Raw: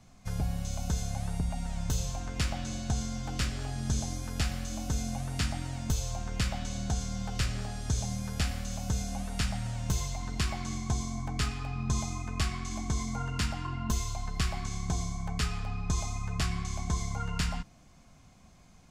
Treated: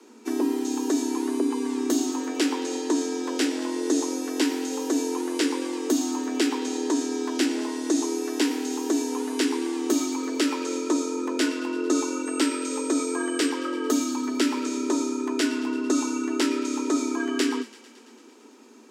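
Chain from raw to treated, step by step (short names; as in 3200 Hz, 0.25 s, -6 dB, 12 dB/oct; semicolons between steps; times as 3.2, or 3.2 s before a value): 12.25–13.49 whine 8100 Hz -43 dBFS; frequency shift +220 Hz; thin delay 0.112 s, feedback 74%, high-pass 1600 Hz, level -17 dB; gain +6 dB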